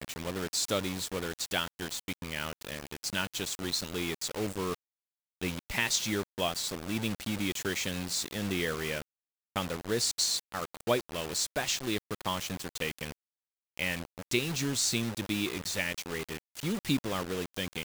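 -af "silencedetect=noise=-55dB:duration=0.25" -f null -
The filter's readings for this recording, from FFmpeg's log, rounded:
silence_start: 4.75
silence_end: 5.41 | silence_duration: 0.67
silence_start: 9.02
silence_end: 9.56 | silence_duration: 0.54
silence_start: 13.12
silence_end: 13.77 | silence_duration: 0.65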